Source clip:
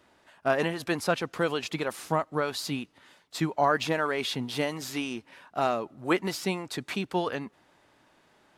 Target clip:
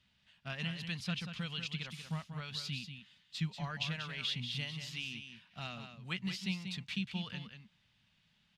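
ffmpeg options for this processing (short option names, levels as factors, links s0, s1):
-filter_complex "[0:a]firequalizer=gain_entry='entry(200,0);entry(300,-25);entry(2900,2);entry(7500,-11);entry(13000,-19)':delay=0.05:min_phase=1,asplit=2[s0][s1];[s1]aecho=0:1:187:0.398[s2];[s0][s2]amix=inputs=2:normalize=0,volume=0.668"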